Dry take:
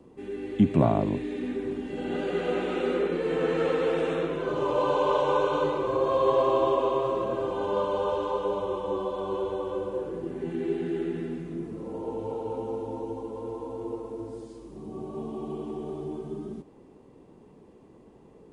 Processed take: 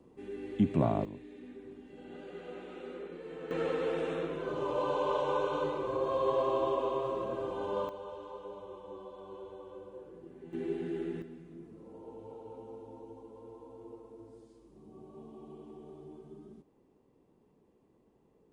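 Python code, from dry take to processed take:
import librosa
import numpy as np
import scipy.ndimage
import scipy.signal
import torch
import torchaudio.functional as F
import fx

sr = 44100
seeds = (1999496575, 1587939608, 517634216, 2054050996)

y = fx.gain(x, sr, db=fx.steps((0.0, -6.5), (1.05, -17.0), (3.51, -7.0), (7.89, -16.5), (10.53, -6.5), (11.22, -14.5)))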